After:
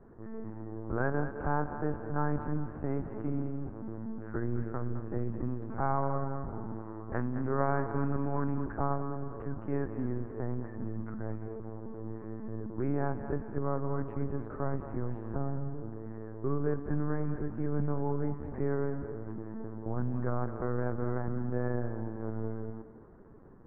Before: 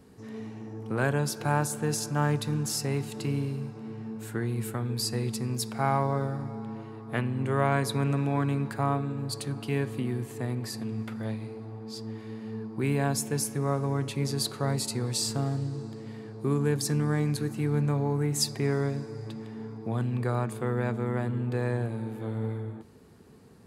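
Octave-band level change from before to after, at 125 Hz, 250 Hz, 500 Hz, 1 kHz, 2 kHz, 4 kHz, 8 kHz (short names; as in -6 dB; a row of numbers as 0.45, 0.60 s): -6.5 dB, -4.0 dB, -3.5 dB, -3.5 dB, -7.0 dB, under -40 dB, under -40 dB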